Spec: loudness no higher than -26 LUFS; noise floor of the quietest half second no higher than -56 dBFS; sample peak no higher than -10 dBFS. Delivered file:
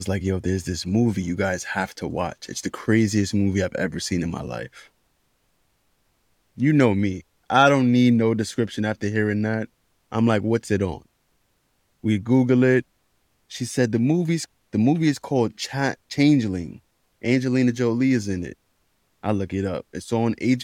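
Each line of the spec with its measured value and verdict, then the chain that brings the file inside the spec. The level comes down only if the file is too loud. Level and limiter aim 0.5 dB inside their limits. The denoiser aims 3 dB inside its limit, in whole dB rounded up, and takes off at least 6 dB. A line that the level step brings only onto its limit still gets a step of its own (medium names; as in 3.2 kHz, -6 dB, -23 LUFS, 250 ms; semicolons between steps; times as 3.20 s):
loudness -22.5 LUFS: fail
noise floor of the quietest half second -68 dBFS: pass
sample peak -5.5 dBFS: fail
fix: trim -4 dB; peak limiter -10.5 dBFS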